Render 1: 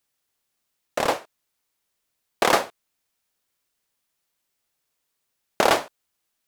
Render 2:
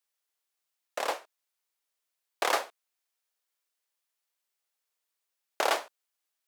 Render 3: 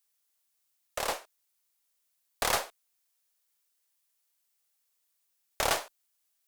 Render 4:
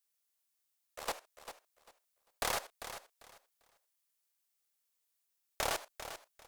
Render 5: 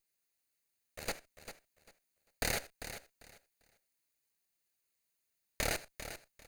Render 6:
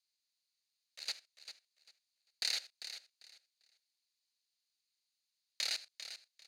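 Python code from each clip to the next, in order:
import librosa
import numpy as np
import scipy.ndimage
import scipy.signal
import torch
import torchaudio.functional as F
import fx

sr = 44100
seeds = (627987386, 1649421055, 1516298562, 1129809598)

y1 = scipy.signal.sosfilt(scipy.signal.bessel(4, 500.0, 'highpass', norm='mag', fs=sr, output='sos'), x)
y1 = y1 * librosa.db_to_amplitude(-7.0)
y2 = fx.diode_clip(y1, sr, knee_db=-28.0)
y2 = fx.high_shelf(y2, sr, hz=5000.0, db=9.5)
y3 = fx.level_steps(y2, sr, step_db=16)
y3 = fx.echo_feedback(y3, sr, ms=396, feedback_pct=21, wet_db=-11.0)
y3 = y3 * librosa.db_to_amplitude(-2.0)
y4 = fx.lower_of_two(y3, sr, delay_ms=0.45)
y5 = fx.bandpass_q(y4, sr, hz=4300.0, q=2.8)
y5 = y5 * librosa.db_to_amplitude(7.5)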